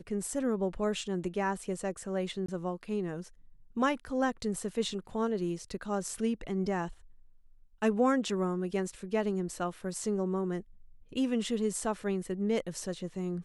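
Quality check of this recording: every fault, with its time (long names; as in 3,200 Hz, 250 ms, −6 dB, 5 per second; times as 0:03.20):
0:02.46–0:02.48: drop-out 24 ms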